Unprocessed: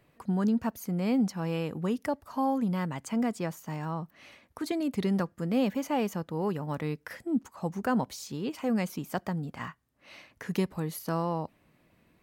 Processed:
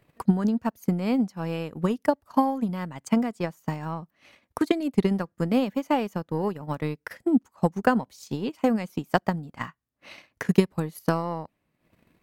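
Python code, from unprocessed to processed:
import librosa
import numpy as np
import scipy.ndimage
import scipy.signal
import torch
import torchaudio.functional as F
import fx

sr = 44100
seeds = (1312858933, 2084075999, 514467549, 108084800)

y = fx.transient(x, sr, attack_db=12, sustain_db=-10)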